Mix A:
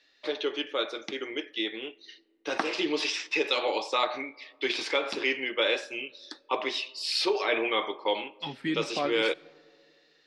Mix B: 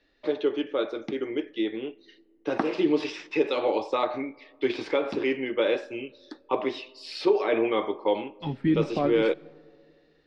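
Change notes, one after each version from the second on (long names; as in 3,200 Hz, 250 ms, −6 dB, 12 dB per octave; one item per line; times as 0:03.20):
master: add spectral tilt −4.5 dB per octave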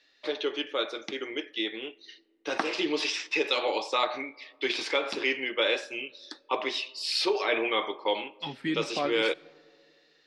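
master: add spectral tilt +4.5 dB per octave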